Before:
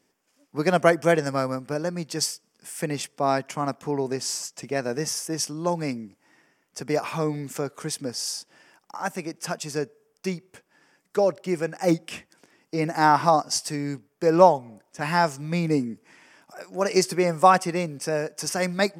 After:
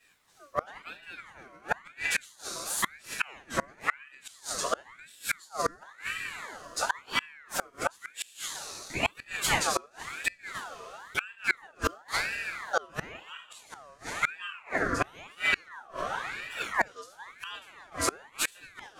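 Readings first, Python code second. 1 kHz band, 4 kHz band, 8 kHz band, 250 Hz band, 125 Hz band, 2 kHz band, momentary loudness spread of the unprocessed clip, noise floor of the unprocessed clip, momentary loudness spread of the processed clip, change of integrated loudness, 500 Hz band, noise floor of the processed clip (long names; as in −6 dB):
−10.0 dB, −3.0 dB, −4.0 dB, −16.5 dB, −16.0 dB, +1.0 dB, 16 LU, −71 dBFS, 14 LU, −7.5 dB, −14.5 dB, −59 dBFS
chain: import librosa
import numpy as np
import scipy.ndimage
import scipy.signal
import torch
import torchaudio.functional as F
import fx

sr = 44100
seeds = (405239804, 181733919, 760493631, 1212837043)

y = fx.rev_double_slope(x, sr, seeds[0], early_s=0.33, late_s=3.1, knee_db=-20, drr_db=-8.0)
y = fx.gate_flip(y, sr, shuts_db=-11.0, range_db=-31)
y = fx.ring_lfo(y, sr, carrier_hz=1500.0, swing_pct=45, hz=0.97)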